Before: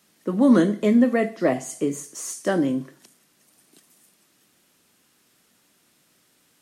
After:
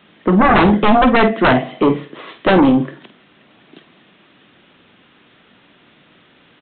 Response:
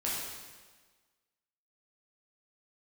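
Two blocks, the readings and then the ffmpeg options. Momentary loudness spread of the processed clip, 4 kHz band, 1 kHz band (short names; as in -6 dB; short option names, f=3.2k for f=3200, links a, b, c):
8 LU, +15.5 dB, +18.5 dB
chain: -filter_complex "[0:a]aresample=8000,aeval=exprs='0.501*sin(PI/2*4.47*val(0)/0.501)':c=same,aresample=44100,asplit=2[a][b];[b]adelay=48,volume=-11dB[c];[a][c]amix=inputs=2:normalize=0,volume=-1.5dB"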